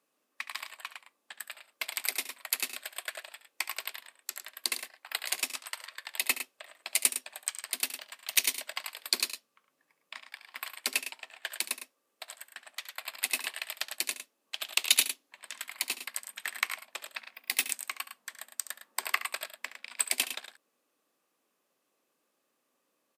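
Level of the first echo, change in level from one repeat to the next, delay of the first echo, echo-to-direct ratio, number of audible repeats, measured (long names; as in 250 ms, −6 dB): −14.0 dB, repeats not evenly spaced, 70 ms, −8.5 dB, 2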